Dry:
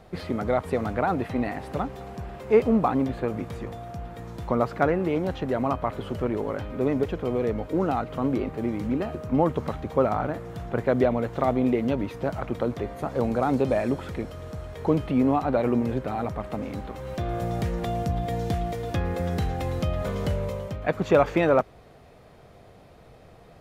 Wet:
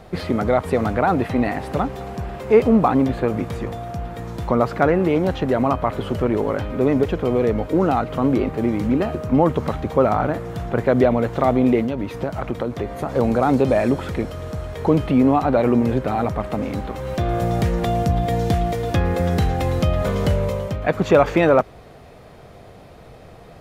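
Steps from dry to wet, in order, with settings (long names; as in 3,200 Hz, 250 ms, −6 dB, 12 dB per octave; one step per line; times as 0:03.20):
in parallel at −3 dB: brickwall limiter −17.5 dBFS, peak gain reduction 11.5 dB
0:11.81–0:13.09: on the sum: downward compressor, threshold −23 dBFS, peak gain reduction 7 dB
level +3 dB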